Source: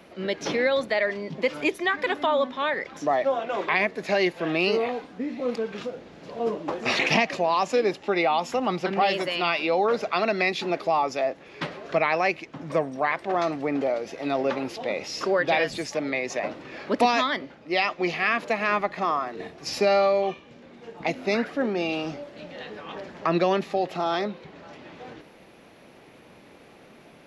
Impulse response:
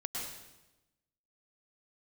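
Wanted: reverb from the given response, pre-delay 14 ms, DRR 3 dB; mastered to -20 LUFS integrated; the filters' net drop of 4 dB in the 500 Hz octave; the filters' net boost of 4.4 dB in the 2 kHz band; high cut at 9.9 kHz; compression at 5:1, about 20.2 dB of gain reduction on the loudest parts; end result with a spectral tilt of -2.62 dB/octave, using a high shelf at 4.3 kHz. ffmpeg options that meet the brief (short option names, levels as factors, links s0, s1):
-filter_complex "[0:a]lowpass=9900,equalizer=f=500:t=o:g=-5.5,equalizer=f=2000:t=o:g=7,highshelf=f=4300:g=-7.5,acompressor=threshold=0.01:ratio=5,asplit=2[s0][s1];[1:a]atrim=start_sample=2205,adelay=14[s2];[s1][s2]afir=irnorm=-1:irlink=0,volume=0.562[s3];[s0][s3]amix=inputs=2:normalize=0,volume=10"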